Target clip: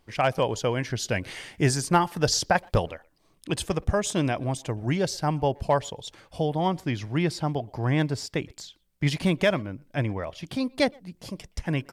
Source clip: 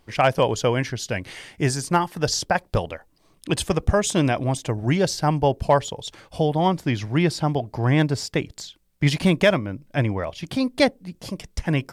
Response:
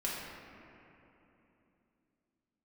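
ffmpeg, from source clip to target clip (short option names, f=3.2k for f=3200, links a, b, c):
-filter_complex "[0:a]asettb=1/sr,asplit=3[a][b][c];[a]atrim=end=0.904[d];[b]atrim=start=0.9:end=2.88,asetpts=PTS-STARTPTS,afade=t=in:d=0.004:c=qsin,afade=t=out:st=1.976:d=0.004:c=qsin,acontrast=21[e];[c]atrim=start=2.876[f];[d][e]acrossfade=d=0.004:c1=hsin:c2=qsin[g];[g][f]acrossfade=d=0.004:c1=qsin:c2=hsin,asplit=2[h][i];[i]adelay=120,highpass=300,lowpass=3.4k,asoftclip=type=hard:threshold=-14dB,volume=-26dB[j];[h][j]amix=inputs=2:normalize=0,volume=-5dB"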